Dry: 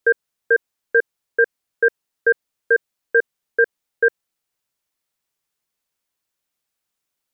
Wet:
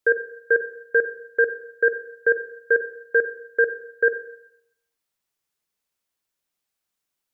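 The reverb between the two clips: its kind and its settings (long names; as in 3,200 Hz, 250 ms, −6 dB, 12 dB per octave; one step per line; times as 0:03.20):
four-comb reverb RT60 0.76 s, DRR 9.5 dB
level −2.5 dB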